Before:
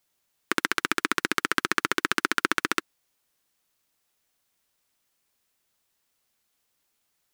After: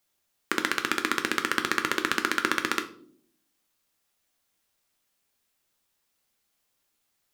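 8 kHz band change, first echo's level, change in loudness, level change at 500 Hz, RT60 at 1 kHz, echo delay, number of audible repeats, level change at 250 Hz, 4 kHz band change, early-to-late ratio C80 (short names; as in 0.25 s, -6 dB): -1.0 dB, none, -0.5 dB, +0.5 dB, 0.50 s, none, none, 0.0 dB, -0.5 dB, 17.5 dB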